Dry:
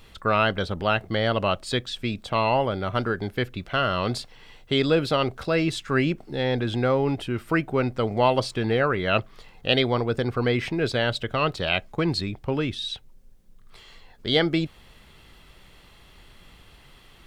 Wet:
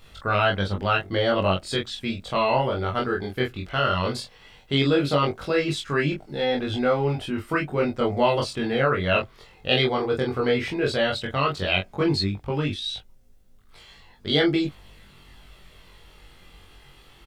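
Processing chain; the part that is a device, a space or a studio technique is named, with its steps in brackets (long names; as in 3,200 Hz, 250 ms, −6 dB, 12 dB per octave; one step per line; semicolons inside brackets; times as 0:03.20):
double-tracked vocal (double-tracking delay 21 ms −2.5 dB; chorus effect 0.15 Hz, delay 19.5 ms, depth 4 ms)
level +1.5 dB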